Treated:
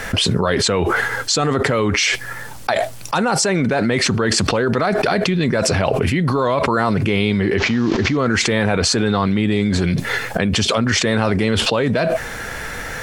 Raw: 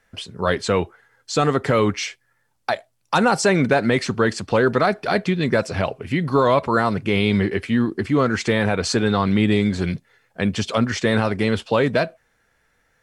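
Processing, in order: 7.58–8.17 delta modulation 32 kbps, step -33.5 dBFS; fast leveller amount 100%; gain -3.5 dB

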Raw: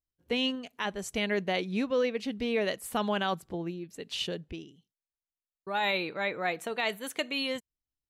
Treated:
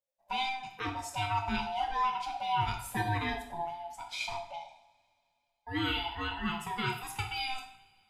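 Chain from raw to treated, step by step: band-swap scrambler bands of 500 Hz; two-slope reverb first 0.59 s, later 3 s, from -26 dB, DRR 1 dB; gain -5 dB

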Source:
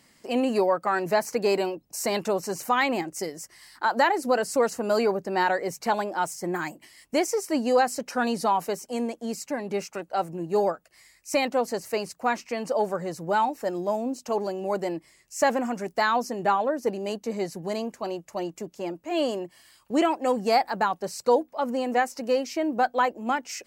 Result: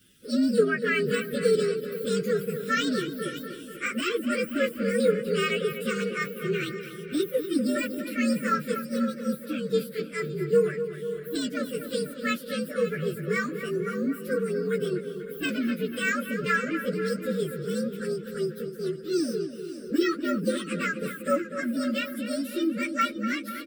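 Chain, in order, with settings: inharmonic rescaling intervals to 123%; echo 0.556 s -16 dB; de-esser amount 90%; Chebyshev band-stop 500–1400 Hz, order 3; darkening echo 0.245 s, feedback 66%, low-pass 3700 Hz, level -10 dB; gain +5 dB

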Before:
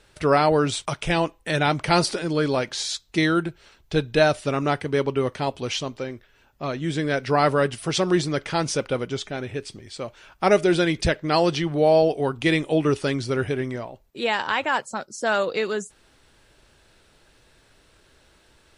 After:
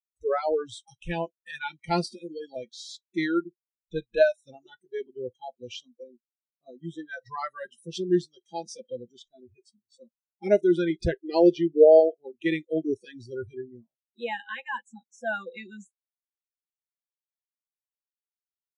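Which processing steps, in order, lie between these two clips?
10.9–12 bell 400 Hz +14.5 dB 0.33 oct; spectral noise reduction 29 dB; spectral expander 1.5:1

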